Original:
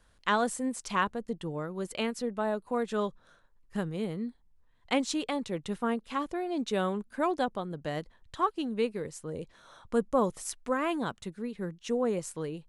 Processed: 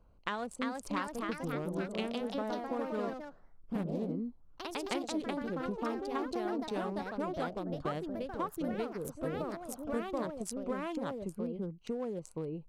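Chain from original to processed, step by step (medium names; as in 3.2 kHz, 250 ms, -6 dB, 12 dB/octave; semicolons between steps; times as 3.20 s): local Wiener filter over 25 samples; compression 6:1, threshold -37 dBFS, peak gain reduction 15 dB; ever faster or slower copies 375 ms, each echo +2 st, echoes 3; trim +2.5 dB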